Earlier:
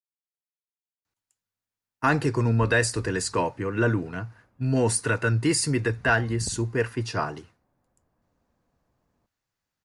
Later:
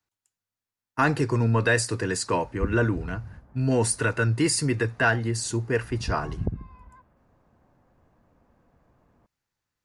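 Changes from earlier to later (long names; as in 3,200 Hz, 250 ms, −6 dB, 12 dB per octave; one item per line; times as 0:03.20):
speech: entry −1.05 s
background +10.0 dB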